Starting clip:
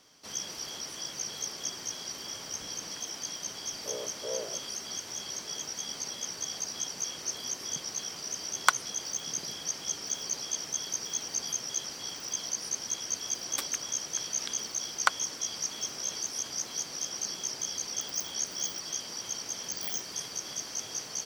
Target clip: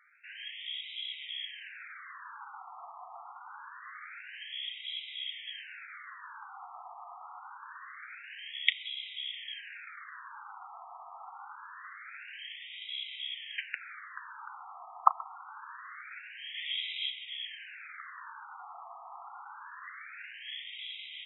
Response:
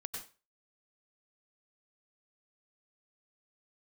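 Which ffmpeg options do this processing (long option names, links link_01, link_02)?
-filter_complex "[0:a]asplit=3[link_01][link_02][link_03];[link_01]afade=type=out:start_time=16.54:duration=0.02[link_04];[link_02]acontrast=62,afade=type=in:start_time=16.54:duration=0.02,afade=type=out:start_time=17.09:duration=0.02[link_05];[link_03]afade=type=in:start_time=17.09:duration=0.02[link_06];[link_04][link_05][link_06]amix=inputs=3:normalize=0,asplit=2[link_07][link_08];[1:a]atrim=start_sample=2205,atrim=end_sample=4410,adelay=35[link_09];[link_08][link_09]afir=irnorm=-1:irlink=0,volume=-14dB[link_10];[link_07][link_10]amix=inputs=2:normalize=0,afftfilt=real='re*between(b*sr/1024,930*pow(2800/930,0.5+0.5*sin(2*PI*0.25*pts/sr))/1.41,930*pow(2800/930,0.5+0.5*sin(2*PI*0.25*pts/sr))*1.41)':imag='im*between(b*sr/1024,930*pow(2800/930,0.5+0.5*sin(2*PI*0.25*pts/sr))/1.41,930*pow(2800/930,0.5+0.5*sin(2*PI*0.25*pts/sr))*1.41)':win_size=1024:overlap=0.75,volume=7dB"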